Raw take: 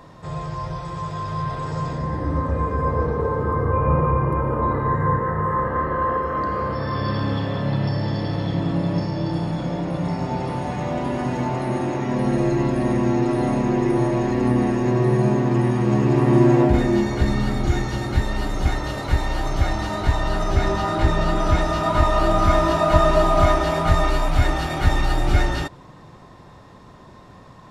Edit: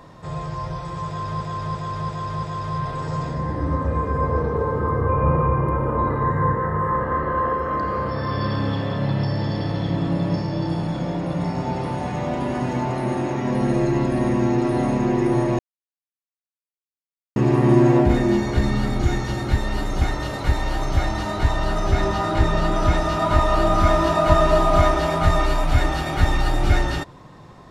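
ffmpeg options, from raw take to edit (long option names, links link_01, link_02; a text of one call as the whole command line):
ffmpeg -i in.wav -filter_complex "[0:a]asplit=7[link_01][link_02][link_03][link_04][link_05][link_06][link_07];[link_01]atrim=end=1.412[link_08];[link_02]atrim=start=1.068:end=1.412[link_09];[link_03]atrim=start=1.068:end=1.412[link_10];[link_04]atrim=start=1.068:end=1.412[link_11];[link_05]atrim=start=1.068:end=14.23,asetpts=PTS-STARTPTS,afade=type=out:start_time=13.158:duration=0.004:curve=hsin[link_12];[link_06]atrim=start=14.23:end=16,asetpts=PTS-STARTPTS,volume=0[link_13];[link_07]atrim=start=16,asetpts=PTS-STARTPTS,afade=type=in:duration=0.004:curve=hsin[link_14];[link_08][link_09]acrossfade=duration=0.004:curve1=hsin:curve2=hsin[link_15];[link_15][link_10]acrossfade=duration=0.004:curve1=hsin:curve2=hsin[link_16];[link_16][link_11]acrossfade=duration=0.004:curve1=hsin:curve2=hsin[link_17];[link_12][link_13][link_14]concat=n=3:v=0:a=1[link_18];[link_17][link_18]acrossfade=duration=0.004:curve1=hsin:curve2=hsin" out.wav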